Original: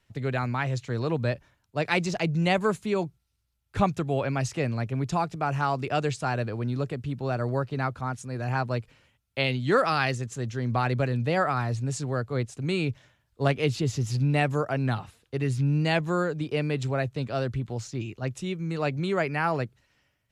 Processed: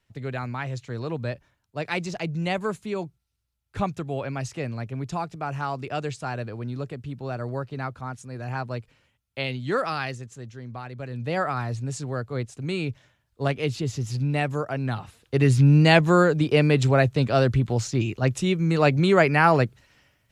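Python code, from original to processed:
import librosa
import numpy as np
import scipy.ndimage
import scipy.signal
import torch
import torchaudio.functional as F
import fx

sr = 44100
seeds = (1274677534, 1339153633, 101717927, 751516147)

y = fx.gain(x, sr, db=fx.line((9.88, -3.0), (10.92, -12.5), (11.34, -1.0), (14.92, -1.0), (15.41, 8.5)))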